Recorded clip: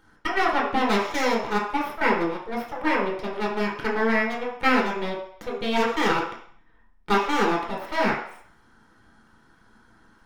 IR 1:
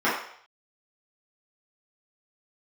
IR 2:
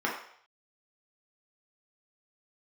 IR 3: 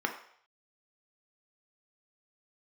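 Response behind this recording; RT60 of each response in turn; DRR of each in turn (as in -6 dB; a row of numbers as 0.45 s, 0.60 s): 2; 0.60 s, 0.60 s, 0.60 s; -11.5 dB, -4.0 dB, 3.0 dB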